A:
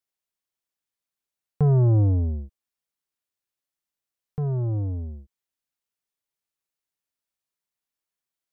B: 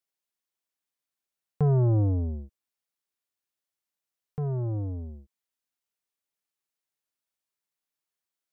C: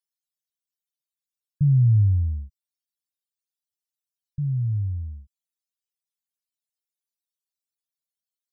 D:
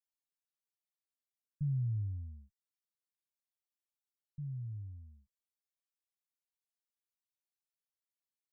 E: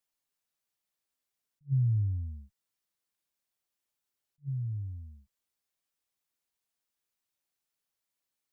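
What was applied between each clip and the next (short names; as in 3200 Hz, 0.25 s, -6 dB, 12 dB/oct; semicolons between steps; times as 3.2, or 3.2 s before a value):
low shelf 130 Hz -6 dB; gain -1 dB
loudest bins only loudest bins 64; inverse Chebyshev band-stop 490–1000 Hz, stop band 80 dB; gain +6 dB
bell 60 Hz -14 dB 2.3 oct; gain -9 dB
attack slew limiter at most 460 dB/s; gain +7.5 dB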